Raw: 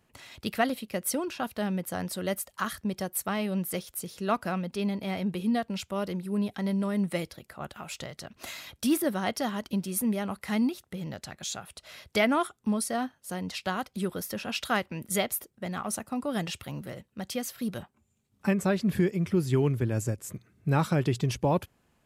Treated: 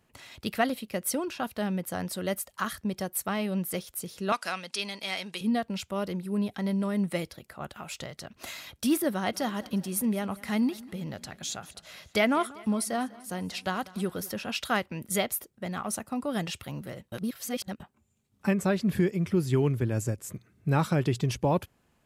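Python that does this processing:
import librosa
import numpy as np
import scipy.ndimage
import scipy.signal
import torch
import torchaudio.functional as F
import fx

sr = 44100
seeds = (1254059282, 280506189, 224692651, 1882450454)

y = fx.weighting(x, sr, curve='ITU-R 468', at=(4.32, 5.41))
y = fx.echo_feedback(y, sr, ms=197, feedback_pct=59, wet_db=-21, at=(9.32, 14.32), fade=0.02)
y = fx.edit(y, sr, fx.reverse_span(start_s=17.12, length_s=0.68), tone=tone)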